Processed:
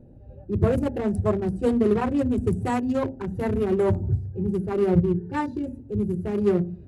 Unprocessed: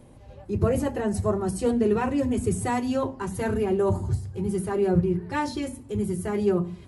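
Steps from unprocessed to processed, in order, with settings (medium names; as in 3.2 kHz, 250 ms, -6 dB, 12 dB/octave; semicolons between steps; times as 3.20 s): local Wiener filter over 41 samples; 5.15–5.66 s: comb of notches 640 Hz; trim +2.5 dB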